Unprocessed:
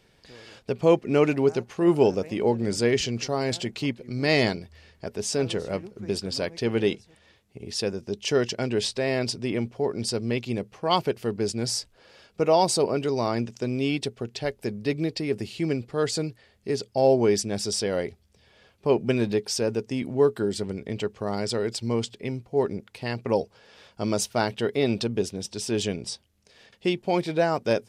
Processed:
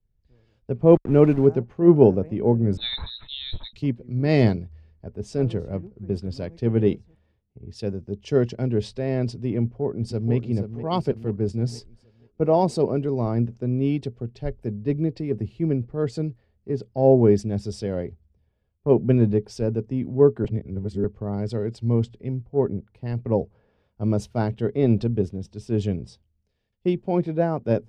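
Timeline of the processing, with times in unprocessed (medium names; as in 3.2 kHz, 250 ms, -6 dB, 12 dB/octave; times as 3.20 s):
0.90–1.47 s: small samples zeroed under -31 dBFS
2.77–3.73 s: frequency inversion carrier 4 kHz
9.62–10.34 s: echo throw 480 ms, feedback 60%, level -7.5 dB
20.44–21.04 s: reverse
whole clip: tilt EQ -4.5 dB/octave; three bands expanded up and down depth 70%; trim -5 dB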